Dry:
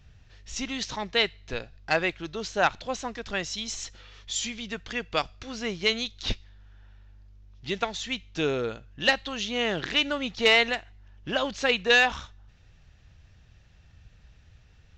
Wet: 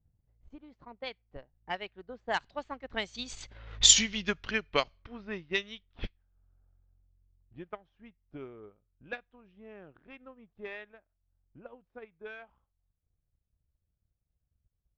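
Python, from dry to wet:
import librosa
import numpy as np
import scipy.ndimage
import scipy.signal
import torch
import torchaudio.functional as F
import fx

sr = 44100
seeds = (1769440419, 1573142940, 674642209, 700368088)

y = fx.doppler_pass(x, sr, speed_mps=38, closest_m=6.1, pass_at_s=3.89)
y = fx.env_lowpass(y, sr, base_hz=640.0, full_db=-39.0)
y = fx.transient(y, sr, attack_db=6, sustain_db=-7)
y = F.gain(torch.from_numpy(y), 9.0).numpy()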